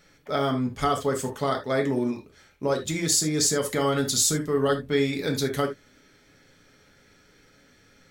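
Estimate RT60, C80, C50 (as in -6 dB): no single decay rate, 19.0 dB, 10.0 dB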